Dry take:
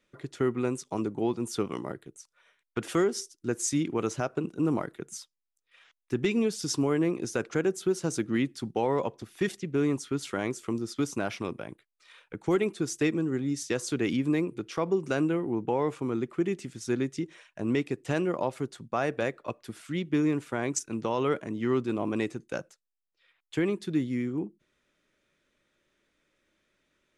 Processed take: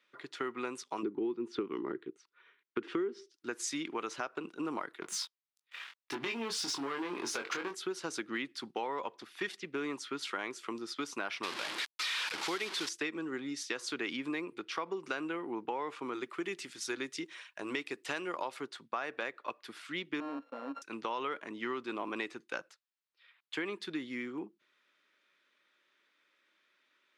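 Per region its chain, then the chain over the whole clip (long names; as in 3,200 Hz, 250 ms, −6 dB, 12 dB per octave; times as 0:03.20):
0:01.03–0:03.34: Bessel low-pass filter 2,700 Hz + low shelf with overshoot 480 Hz +8 dB, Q 3
0:05.02–0:07.75: downward compressor 3 to 1, threshold −38 dBFS + leveller curve on the samples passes 3 + double-tracking delay 22 ms −5 dB
0:11.43–0:12.89: linear delta modulator 64 kbit/s, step −32 dBFS + parametric band 5,000 Hz +7.5 dB 2.5 octaves
0:16.13–0:18.57: high-shelf EQ 5,400 Hz +10.5 dB + notch filter 230 Hz, Q 6.9
0:20.20–0:20.82: samples sorted by size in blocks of 32 samples + leveller curve on the samples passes 2 + pair of resonant band-passes 370 Hz, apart 0.92 octaves
whole clip: Chebyshev high-pass filter 330 Hz, order 2; flat-topped bell 2,100 Hz +10.5 dB 2.8 octaves; downward compressor, threshold −26 dBFS; level −6.5 dB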